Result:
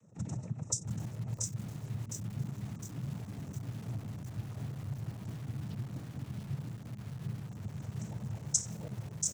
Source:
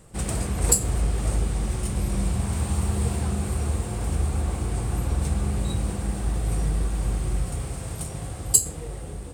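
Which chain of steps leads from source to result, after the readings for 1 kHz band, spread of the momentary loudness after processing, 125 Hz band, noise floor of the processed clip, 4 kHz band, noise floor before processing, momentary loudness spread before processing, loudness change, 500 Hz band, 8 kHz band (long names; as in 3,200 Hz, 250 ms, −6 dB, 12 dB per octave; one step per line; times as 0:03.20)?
−18.0 dB, 7 LU, −11.0 dB, −48 dBFS, −11.0 dB, −35 dBFS, 12 LU, −13.0 dB, −18.0 dB, −11.0 dB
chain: spectral envelope exaggerated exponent 2
parametric band 300 Hz −12.5 dB 1.4 octaves
downward compressor 20 to 1, threshold −26 dBFS, peak gain reduction 16 dB
cochlear-implant simulation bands 12
single-tap delay 684 ms −5.5 dB
feedback echo at a low word length 709 ms, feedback 55%, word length 8 bits, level −5.5 dB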